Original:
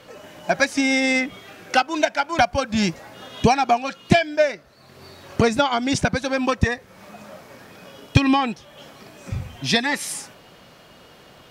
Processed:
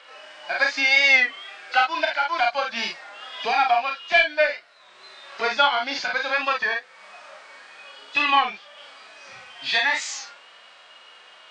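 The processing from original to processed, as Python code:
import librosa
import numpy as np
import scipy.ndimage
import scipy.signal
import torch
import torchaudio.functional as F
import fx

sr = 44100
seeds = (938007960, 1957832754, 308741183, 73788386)

p1 = fx.freq_compress(x, sr, knee_hz=3300.0, ratio=1.5)
p2 = scipy.signal.sosfilt(scipy.signal.butter(2, 1100.0, 'highpass', fs=sr, output='sos'), p1)
p3 = 10.0 ** (-16.5 / 20.0) * np.tanh(p2 / 10.0 ** (-16.5 / 20.0))
p4 = p2 + (p3 * 10.0 ** (-4.5 / 20.0))
p5 = fx.air_absorb(p4, sr, metres=75.0)
p6 = p5 + fx.room_early_taps(p5, sr, ms=(36, 50), db=(-6.0, -9.0), dry=0)
p7 = fx.hpss(p6, sr, part='percussive', gain_db=-14)
p8 = fx.record_warp(p7, sr, rpm=33.33, depth_cents=100.0)
y = p8 * 10.0 ** (3.0 / 20.0)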